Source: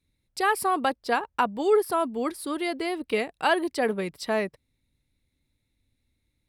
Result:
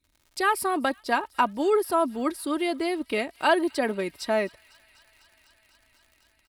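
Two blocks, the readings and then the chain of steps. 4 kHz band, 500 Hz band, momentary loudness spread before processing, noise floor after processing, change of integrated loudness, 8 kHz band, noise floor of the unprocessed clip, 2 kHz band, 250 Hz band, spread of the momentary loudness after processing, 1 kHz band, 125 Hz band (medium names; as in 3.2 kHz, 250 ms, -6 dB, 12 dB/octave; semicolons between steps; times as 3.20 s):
+0.5 dB, 0.0 dB, 7 LU, -67 dBFS, +0.5 dB, +1.0 dB, -76 dBFS, +0.5 dB, +2.0 dB, 6 LU, +0.5 dB, no reading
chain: crackle 100 per s -46 dBFS; comb 3.2 ms, depth 47%; feedback echo behind a high-pass 250 ms, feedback 84%, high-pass 2.3 kHz, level -23.5 dB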